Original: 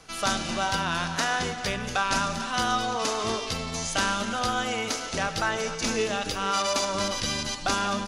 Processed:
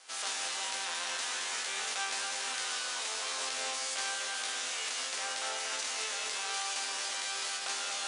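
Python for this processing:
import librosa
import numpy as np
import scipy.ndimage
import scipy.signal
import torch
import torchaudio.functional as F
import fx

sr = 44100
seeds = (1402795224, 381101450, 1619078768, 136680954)

p1 = fx.spec_flatten(x, sr, power=0.31)
p2 = scipy.signal.sosfilt(scipy.signal.butter(2, 600.0, 'highpass', fs=sr, output='sos'), p1)
p3 = fx.resonator_bank(p2, sr, root=41, chord='fifth', decay_s=0.25)
p4 = p3 + 10.0 ** (-10.0 / 20.0) * np.pad(p3, (int(232 * sr / 1000.0), 0))[:len(p3)]
p5 = fx.over_compress(p4, sr, threshold_db=-43.0, ratio=-0.5)
p6 = p4 + (p5 * librosa.db_to_amplitude(-0.5))
y = scipy.signal.sosfilt(scipy.signal.cheby1(6, 1.0, 9700.0, 'lowpass', fs=sr, output='sos'), p6)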